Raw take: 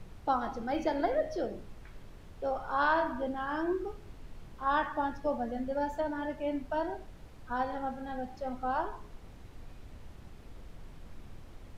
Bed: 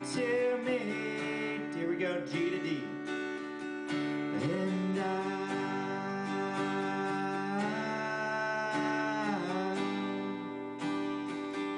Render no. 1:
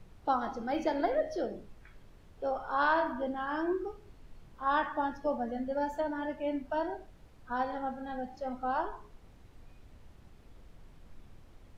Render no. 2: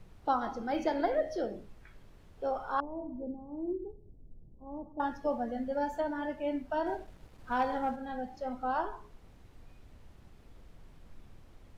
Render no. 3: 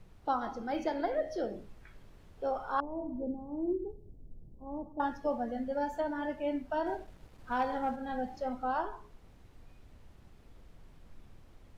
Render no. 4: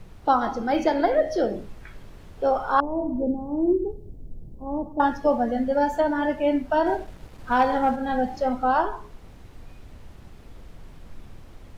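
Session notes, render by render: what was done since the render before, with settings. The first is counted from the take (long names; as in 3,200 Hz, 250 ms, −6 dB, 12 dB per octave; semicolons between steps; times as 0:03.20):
noise reduction from a noise print 6 dB
0:02.80–0:05.00: Gaussian smoothing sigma 17 samples; 0:06.86–0:07.96: leveller curve on the samples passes 1
speech leveller within 3 dB 0.5 s
level +11.5 dB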